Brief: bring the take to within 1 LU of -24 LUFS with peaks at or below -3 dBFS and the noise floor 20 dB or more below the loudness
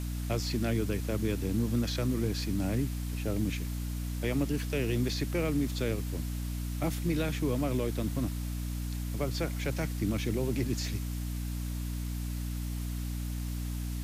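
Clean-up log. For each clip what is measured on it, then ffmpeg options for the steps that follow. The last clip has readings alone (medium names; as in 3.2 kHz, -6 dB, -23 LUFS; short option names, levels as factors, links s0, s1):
hum 60 Hz; highest harmonic 300 Hz; hum level -32 dBFS; noise floor -35 dBFS; noise floor target -53 dBFS; loudness -33.0 LUFS; peak level -18.0 dBFS; loudness target -24.0 LUFS
-> -af "bandreject=f=60:t=h:w=4,bandreject=f=120:t=h:w=4,bandreject=f=180:t=h:w=4,bandreject=f=240:t=h:w=4,bandreject=f=300:t=h:w=4"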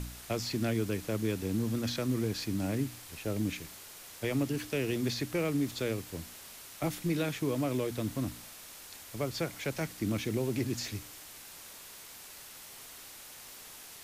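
hum not found; noise floor -49 dBFS; noise floor target -54 dBFS
-> -af "afftdn=nr=6:nf=-49"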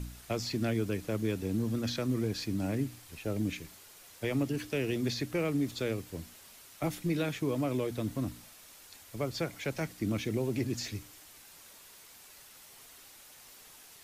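noise floor -55 dBFS; loudness -34.0 LUFS; peak level -20.0 dBFS; loudness target -24.0 LUFS
-> -af "volume=3.16"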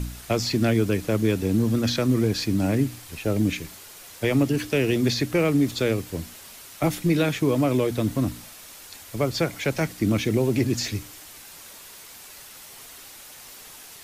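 loudness -24.0 LUFS; peak level -10.0 dBFS; noise floor -45 dBFS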